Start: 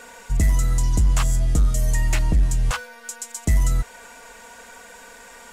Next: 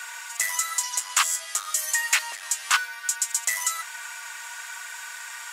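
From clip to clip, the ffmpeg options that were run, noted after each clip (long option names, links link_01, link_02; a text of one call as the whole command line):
ffmpeg -i in.wav -af "highpass=frequency=1100:width=0.5412,highpass=frequency=1100:width=1.3066,volume=8dB" out.wav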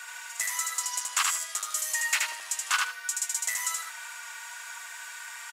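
ffmpeg -i in.wav -af "aecho=1:1:77|154|231:0.708|0.149|0.0312,volume=-5.5dB" out.wav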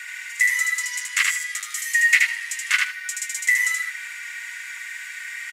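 ffmpeg -i in.wav -af "highpass=frequency=2000:width_type=q:width=7.5" out.wav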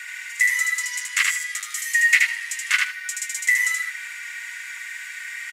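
ffmpeg -i in.wav -af anull out.wav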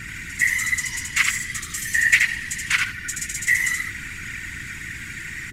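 ffmpeg -i in.wav -af "aeval=exprs='val(0)+0.0112*(sin(2*PI*60*n/s)+sin(2*PI*2*60*n/s)/2+sin(2*PI*3*60*n/s)/3+sin(2*PI*4*60*n/s)/4+sin(2*PI*5*60*n/s)/5)':channel_layout=same,afftfilt=real='hypot(re,im)*cos(2*PI*random(0))':imag='hypot(re,im)*sin(2*PI*random(1))':win_size=512:overlap=0.75,volume=6dB" out.wav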